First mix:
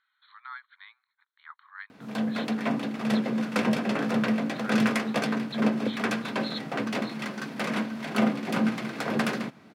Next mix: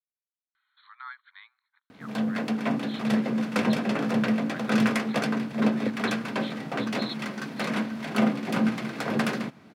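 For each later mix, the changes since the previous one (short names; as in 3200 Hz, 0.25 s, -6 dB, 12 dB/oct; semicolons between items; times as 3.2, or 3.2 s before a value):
speech: entry +0.55 s; master: add low shelf 100 Hz +6.5 dB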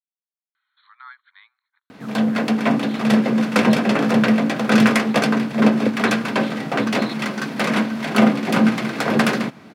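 background +9.5 dB; master: add low shelf 100 Hz -6.5 dB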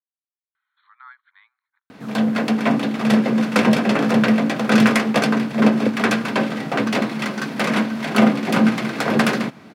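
speech: add air absorption 340 m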